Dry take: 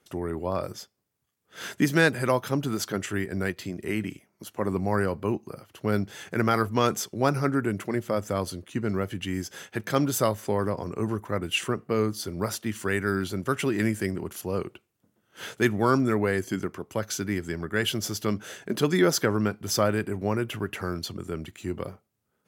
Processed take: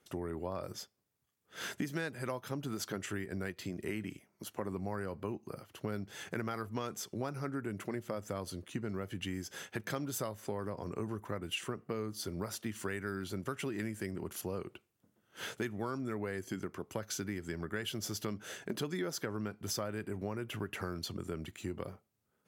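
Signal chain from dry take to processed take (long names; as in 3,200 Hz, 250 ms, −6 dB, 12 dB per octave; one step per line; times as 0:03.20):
downward compressor 6 to 1, threshold −31 dBFS, peak gain reduction 15 dB
level −3.5 dB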